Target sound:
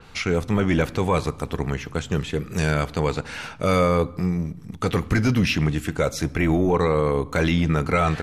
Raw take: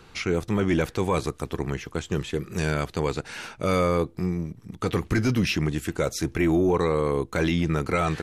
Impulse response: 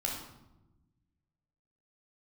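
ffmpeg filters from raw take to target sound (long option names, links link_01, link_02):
-filter_complex "[0:a]equalizer=frequency=350:width_type=o:width=0.26:gain=-6.5,asplit=2[link_01][link_02];[1:a]atrim=start_sample=2205[link_03];[link_02][link_03]afir=irnorm=-1:irlink=0,volume=-19.5dB[link_04];[link_01][link_04]amix=inputs=2:normalize=0,adynamicequalizer=threshold=0.00562:dfrequency=4400:dqfactor=0.7:tfrequency=4400:tqfactor=0.7:attack=5:release=100:ratio=0.375:range=2.5:mode=cutabove:tftype=highshelf,volume=3dB"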